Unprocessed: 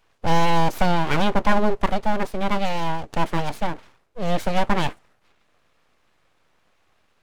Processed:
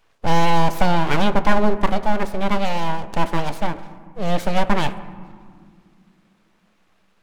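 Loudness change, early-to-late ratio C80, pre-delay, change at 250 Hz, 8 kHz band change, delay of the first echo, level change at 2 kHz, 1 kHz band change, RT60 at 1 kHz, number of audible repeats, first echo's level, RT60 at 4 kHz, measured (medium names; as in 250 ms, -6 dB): +2.0 dB, 15.0 dB, 3 ms, +2.5 dB, no reading, no echo, +1.5 dB, +2.0 dB, 1.9 s, no echo, no echo, 1.2 s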